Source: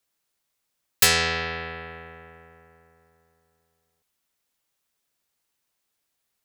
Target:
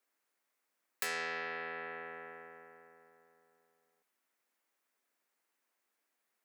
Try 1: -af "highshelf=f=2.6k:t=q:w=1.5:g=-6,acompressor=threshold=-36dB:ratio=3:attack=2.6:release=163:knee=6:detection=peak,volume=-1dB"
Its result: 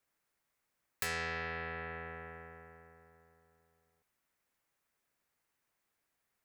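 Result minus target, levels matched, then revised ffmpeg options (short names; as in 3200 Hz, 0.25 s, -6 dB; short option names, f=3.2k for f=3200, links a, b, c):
250 Hz band +5.0 dB
-af "highshelf=f=2.6k:t=q:w=1.5:g=-6,acompressor=threshold=-36dB:ratio=3:attack=2.6:release=163:knee=6:detection=peak,highpass=f=230:w=0.5412,highpass=f=230:w=1.3066,volume=-1dB"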